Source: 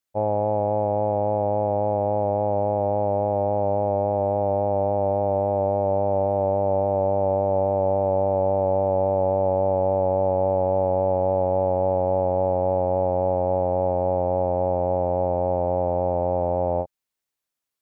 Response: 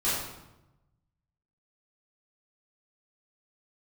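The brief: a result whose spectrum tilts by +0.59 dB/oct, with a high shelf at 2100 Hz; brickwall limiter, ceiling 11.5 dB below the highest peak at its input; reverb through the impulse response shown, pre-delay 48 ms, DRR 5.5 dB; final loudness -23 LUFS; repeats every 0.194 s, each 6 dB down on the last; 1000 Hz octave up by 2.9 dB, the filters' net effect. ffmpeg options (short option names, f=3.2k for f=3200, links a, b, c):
-filter_complex "[0:a]equalizer=f=1k:t=o:g=5,highshelf=f=2.1k:g=-5,alimiter=limit=-22dB:level=0:latency=1,aecho=1:1:194|388|582|776|970|1164:0.501|0.251|0.125|0.0626|0.0313|0.0157,asplit=2[a][b];[1:a]atrim=start_sample=2205,adelay=48[c];[b][c]afir=irnorm=-1:irlink=0,volume=-16dB[d];[a][d]amix=inputs=2:normalize=0,volume=6dB"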